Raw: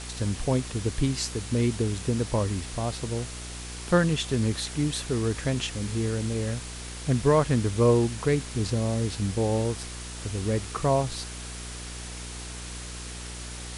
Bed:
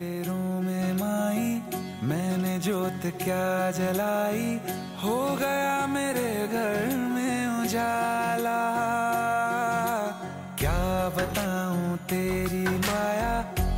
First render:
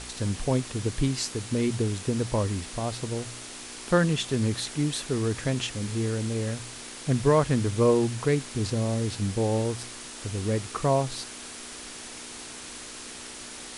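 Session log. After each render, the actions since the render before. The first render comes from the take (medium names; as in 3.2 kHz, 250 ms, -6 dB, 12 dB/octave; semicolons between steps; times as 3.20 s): de-hum 60 Hz, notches 3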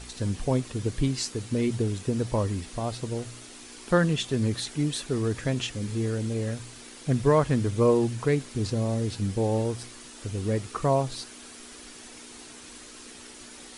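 noise reduction 7 dB, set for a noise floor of -41 dBFS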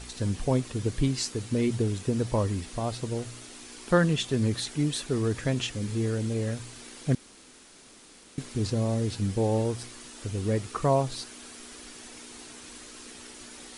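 7.15–8.38 s: room tone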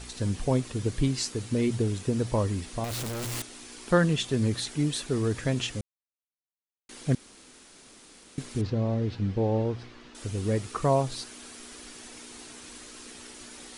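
2.84–3.42 s: one-bit comparator; 5.81–6.89 s: mute; 8.61–10.15 s: distance through air 230 m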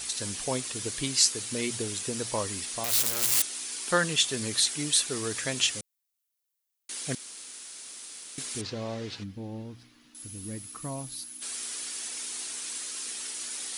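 9.24–11.42 s: time-frequency box 340–10000 Hz -14 dB; tilt EQ +4 dB/octave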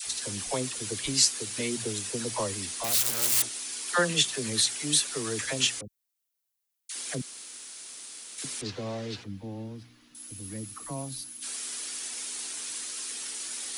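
phase dispersion lows, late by 72 ms, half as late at 700 Hz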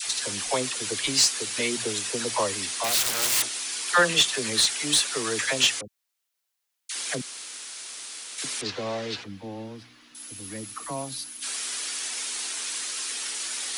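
overdrive pedal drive 14 dB, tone 4.5 kHz, clips at -6.5 dBFS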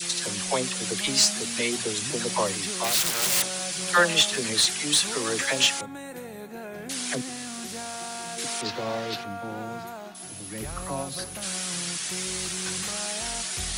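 add bed -11.5 dB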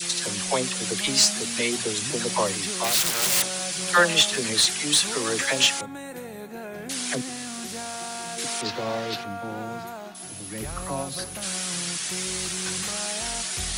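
trim +1.5 dB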